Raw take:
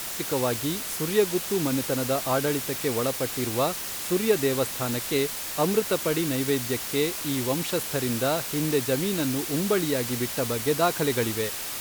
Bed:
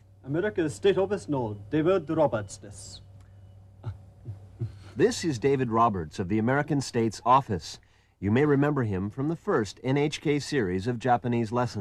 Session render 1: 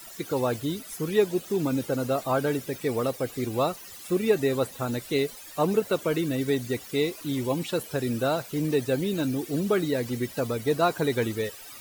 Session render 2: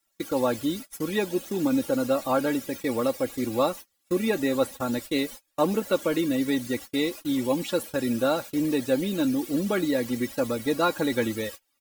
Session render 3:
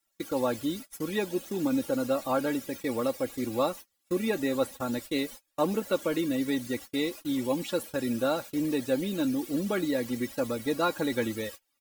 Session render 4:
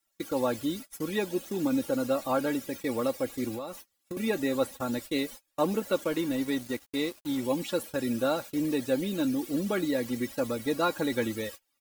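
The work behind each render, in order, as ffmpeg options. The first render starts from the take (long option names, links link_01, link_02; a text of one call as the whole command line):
ffmpeg -i in.wav -af "afftdn=noise_reduction=16:noise_floor=-34" out.wav
ffmpeg -i in.wav -af "agate=range=-32dB:threshold=-37dB:ratio=16:detection=peak,aecho=1:1:3.6:0.6" out.wav
ffmpeg -i in.wav -af "volume=-3.5dB" out.wav
ffmpeg -i in.wav -filter_complex "[0:a]asettb=1/sr,asplit=3[link_01][link_02][link_03];[link_01]atrim=end=3.544[link_04];[link_02]atrim=start=3.54:end=4.17,asetpts=PTS-STARTPTS,afade=type=in:duration=0.004:curve=qsin,afade=type=out:start_time=0.626:duration=0.004:curve=qsin,acompressor=threshold=-32dB:ratio=12:attack=3.2:release=140:knee=1:detection=peak[link_05];[link_03]atrim=start=4.166[link_06];[link_04][link_05]acrossfade=duration=0.004:curve1=hsin:curve2=qsin[link_07];[link_07][link_06]acrossfade=duration=0.004:curve1=qsin:curve2=hsin,asettb=1/sr,asplit=3[link_08][link_09][link_10];[link_08]atrim=end=6.044[link_11];[link_09]atrim=start=6.04:end=7.43,asetpts=PTS-STARTPTS,afade=type=in:duration=0.004:curve=qsin,afade=type=out:start_time=1.386:duration=0.004:curve=qsin,aeval=exprs='sgn(val(0))*max(abs(val(0))-0.00562,0)':channel_layout=same[link_12];[link_10]atrim=start=7.426[link_13];[link_11][link_12]acrossfade=duration=0.004:curve1=hsin:curve2=qsin[link_14];[link_14][link_13]acrossfade=duration=0.004:curve1=qsin:curve2=hsin" out.wav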